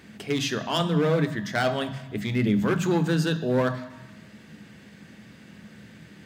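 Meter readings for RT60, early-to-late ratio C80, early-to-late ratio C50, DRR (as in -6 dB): 1.1 s, 14.0 dB, 12.0 dB, 8.5 dB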